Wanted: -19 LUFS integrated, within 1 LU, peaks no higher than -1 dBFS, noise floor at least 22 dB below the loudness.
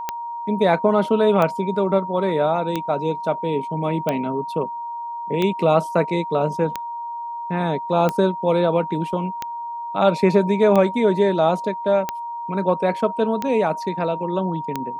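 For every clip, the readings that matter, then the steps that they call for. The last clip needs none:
clicks found 12; steady tone 940 Hz; tone level -27 dBFS; loudness -21.0 LUFS; peak level -4.0 dBFS; loudness target -19.0 LUFS
-> de-click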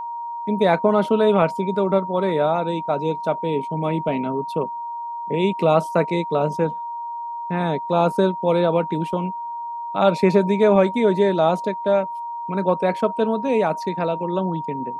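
clicks found 0; steady tone 940 Hz; tone level -27 dBFS
-> band-stop 940 Hz, Q 30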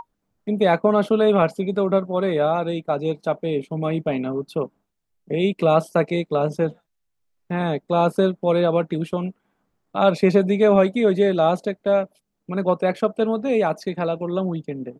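steady tone not found; loudness -21.0 LUFS; peak level -4.5 dBFS; loudness target -19.0 LUFS
-> trim +2 dB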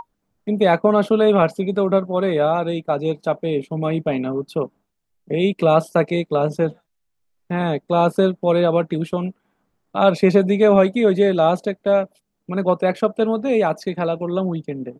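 loudness -19.0 LUFS; peak level -2.5 dBFS; noise floor -73 dBFS

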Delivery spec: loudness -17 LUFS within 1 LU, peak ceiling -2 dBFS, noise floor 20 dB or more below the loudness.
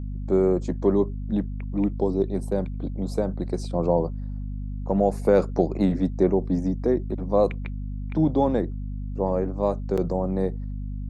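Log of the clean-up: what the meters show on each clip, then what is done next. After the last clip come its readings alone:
dropouts 1; longest dropout 6.1 ms; hum 50 Hz; highest harmonic 250 Hz; hum level -28 dBFS; loudness -25.0 LUFS; peak level -6.5 dBFS; loudness target -17.0 LUFS
-> interpolate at 9.97 s, 6.1 ms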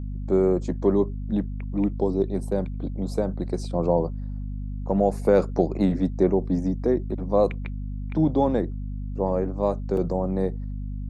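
dropouts 0; hum 50 Hz; highest harmonic 250 Hz; hum level -28 dBFS
-> de-hum 50 Hz, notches 5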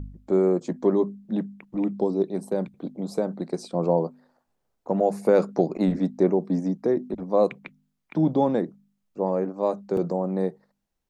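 hum not found; loudness -25.5 LUFS; peak level -7.5 dBFS; loudness target -17.0 LUFS
-> trim +8.5 dB; peak limiter -2 dBFS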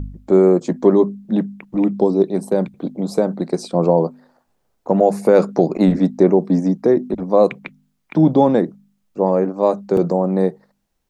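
loudness -17.5 LUFS; peak level -2.0 dBFS; noise floor -69 dBFS

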